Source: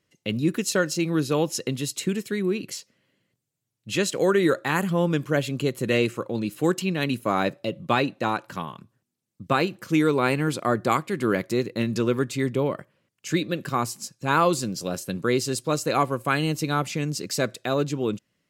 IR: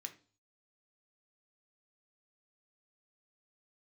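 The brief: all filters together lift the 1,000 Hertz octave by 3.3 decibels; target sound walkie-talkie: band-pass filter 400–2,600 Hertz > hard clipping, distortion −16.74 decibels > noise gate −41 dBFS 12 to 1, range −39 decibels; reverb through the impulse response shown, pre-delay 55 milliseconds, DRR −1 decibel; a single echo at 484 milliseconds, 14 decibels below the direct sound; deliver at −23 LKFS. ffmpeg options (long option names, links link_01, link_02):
-filter_complex "[0:a]equalizer=frequency=1000:width_type=o:gain=4.5,aecho=1:1:484:0.2,asplit=2[link_01][link_02];[1:a]atrim=start_sample=2205,adelay=55[link_03];[link_02][link_03]afir=irnorm=-1:irlink=0,volume=5dB[link_04];[link_01][link_04]amix=inputs=2:normalize=0,highpass=400,lowpass=2600,asoftclip=type=hard:threshold=-12.5dB,agate=range=-39dB:threshold=-41dB:ratio=12,volume=1.5dB"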